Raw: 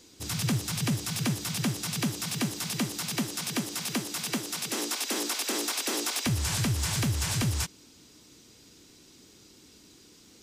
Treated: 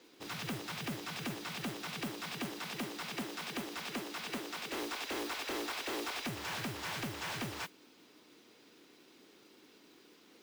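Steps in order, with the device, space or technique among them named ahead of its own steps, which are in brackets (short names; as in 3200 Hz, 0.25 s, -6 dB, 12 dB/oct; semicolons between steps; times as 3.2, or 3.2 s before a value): carbon microphone (BPF 330–2800 Hz; soft clip -33.5 dBFS, distortion -11 dB; modulation noise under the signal 12 dB)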